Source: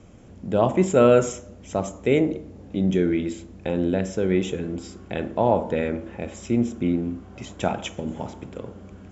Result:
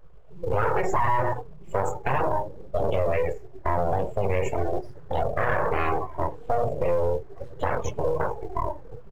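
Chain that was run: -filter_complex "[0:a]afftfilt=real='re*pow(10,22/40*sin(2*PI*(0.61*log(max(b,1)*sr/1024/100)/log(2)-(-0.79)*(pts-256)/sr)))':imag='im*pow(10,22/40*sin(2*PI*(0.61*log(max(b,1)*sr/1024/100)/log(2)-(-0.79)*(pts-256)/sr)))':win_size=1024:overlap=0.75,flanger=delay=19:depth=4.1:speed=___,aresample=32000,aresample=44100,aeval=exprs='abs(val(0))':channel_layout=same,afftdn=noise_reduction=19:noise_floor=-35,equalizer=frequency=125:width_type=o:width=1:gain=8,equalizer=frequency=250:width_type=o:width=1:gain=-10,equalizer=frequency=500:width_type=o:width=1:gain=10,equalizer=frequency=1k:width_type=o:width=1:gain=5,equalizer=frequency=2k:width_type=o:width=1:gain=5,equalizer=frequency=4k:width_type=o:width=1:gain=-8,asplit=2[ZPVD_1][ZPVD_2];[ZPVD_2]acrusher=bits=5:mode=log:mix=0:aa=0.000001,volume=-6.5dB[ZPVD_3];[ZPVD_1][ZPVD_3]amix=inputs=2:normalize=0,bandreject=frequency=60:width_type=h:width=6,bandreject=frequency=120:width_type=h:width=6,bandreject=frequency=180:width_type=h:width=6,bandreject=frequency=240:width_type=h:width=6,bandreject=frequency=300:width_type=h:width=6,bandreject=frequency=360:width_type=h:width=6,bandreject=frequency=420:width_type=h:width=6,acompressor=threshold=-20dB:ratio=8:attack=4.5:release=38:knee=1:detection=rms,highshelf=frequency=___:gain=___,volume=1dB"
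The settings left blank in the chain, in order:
1.2, 4.2k, -8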